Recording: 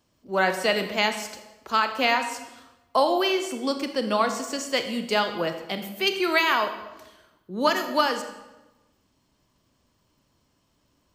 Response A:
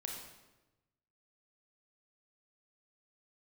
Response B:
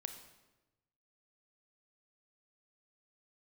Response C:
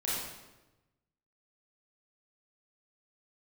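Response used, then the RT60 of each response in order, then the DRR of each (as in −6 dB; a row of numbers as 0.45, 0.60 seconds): B; 1.1, 1.1, 1.1 seconds; 0.0, 7.0, −8.5 decibels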